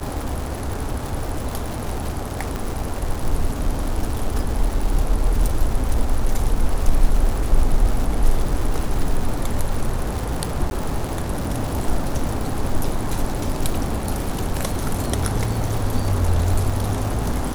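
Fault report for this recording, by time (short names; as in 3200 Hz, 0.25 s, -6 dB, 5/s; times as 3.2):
crackle 260/s -25 dBFS
2.56 pop
10.7–10.71 gap 10 ms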